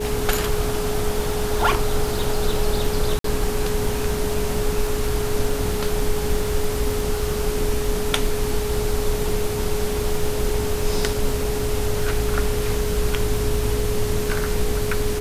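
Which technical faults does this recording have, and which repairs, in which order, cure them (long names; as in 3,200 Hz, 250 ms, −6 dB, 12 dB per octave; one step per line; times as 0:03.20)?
surface crackle 46 per second −27 dBFS
whistle 420 Hz −25 dBFS
0:03.19–0:03.24: drop-out 53 ms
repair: click removal
notch filter 420 Hz, Q 30
repair the gap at 0:03.19, 53 ms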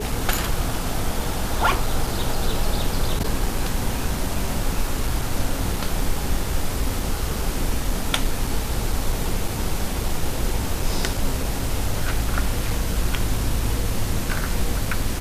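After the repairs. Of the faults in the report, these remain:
none of them is left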